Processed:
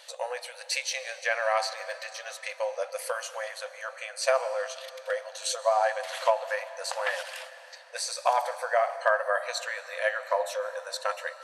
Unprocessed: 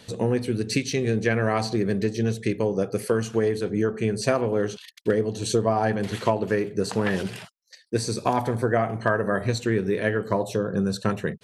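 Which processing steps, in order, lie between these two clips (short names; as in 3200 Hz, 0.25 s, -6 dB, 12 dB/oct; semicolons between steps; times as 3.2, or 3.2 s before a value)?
brick-wall FIR high-pass 500 Hz; on a send: reverb RT60 3.7 s, pre-delay 95 ms, DRR 13.5 dB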